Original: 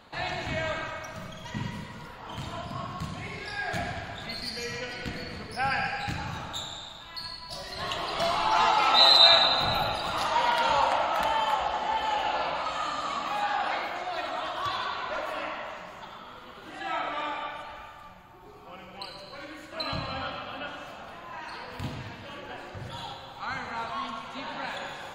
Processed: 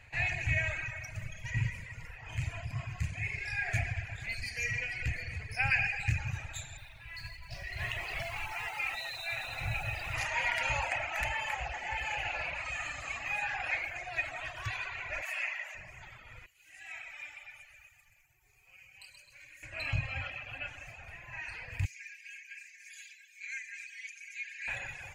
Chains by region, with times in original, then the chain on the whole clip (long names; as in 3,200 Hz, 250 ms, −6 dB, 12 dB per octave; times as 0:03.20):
0:06.77–0:10.15: low-pass filter 4,800 Hz 24 dB per octave + downward compressor, threshold −27 dBFS + noise that follows the level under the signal 21 dB
0:15.22–0:15.75: high-pass filter 670 Hz + high-shelf EQ 4,900 Hz +10 dB
0:16.46–0:19.63: first-order pre-emphasis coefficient 0.9 + feedback echo at a low word length 129 ms, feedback 35%, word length 12 bits, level −4.5 dB
0:21.85–0:24.68: Chebyshev high-pass with heavy ripple 1,600 Hz, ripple 9 dB + high-shelf EQ 6,600 Hz +10 dB + comb filter 5 ms, depth 62%
whole clip: drawn EQ curve 120 Hz 0 dB, 200 Hz −23 dB, 420 Hz −20 dB, 740 Hz −16 dB, 1,200 Hz −23 dB, 1,900 Hz −3 dB, 3,700 Hz −22 dB, 6,400 Hz −6 dB, 15,000 Hz −14 dB; reverb reduction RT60 0.82 s; parametric band 2,500 Hz +14.5 dB 0.23 octaves; level +7.5 dB